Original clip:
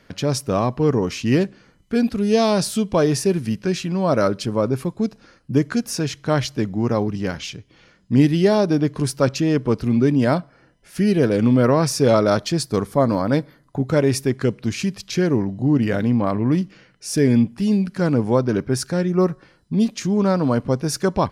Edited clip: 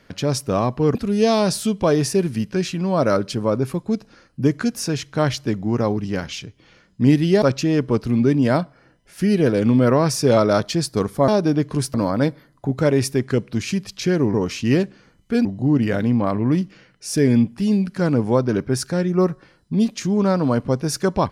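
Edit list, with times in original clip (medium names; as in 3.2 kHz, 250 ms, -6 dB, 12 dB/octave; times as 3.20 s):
0.95–2.06 s: move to 15.45 s
8.53–9.19 s: move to 13.05 s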